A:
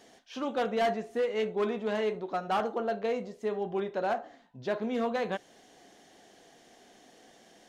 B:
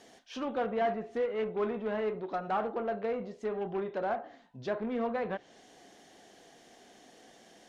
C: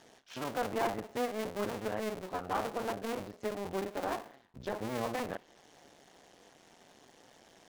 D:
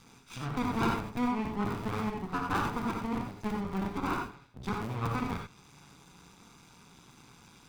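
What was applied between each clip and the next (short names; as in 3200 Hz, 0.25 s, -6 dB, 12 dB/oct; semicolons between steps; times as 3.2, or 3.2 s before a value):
added harmonics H 3 -22 dB, 5 -19 dB, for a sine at -23 dBFS; treble ducked by the level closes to 2100 Hz, closed at -28 dBFS; gain -2 dB
cycle switcher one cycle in 2, muted
minimum comb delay 0.81 ms; non-linear reverb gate 0.11 s rising, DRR 2.5 dB; gain +3.5 dB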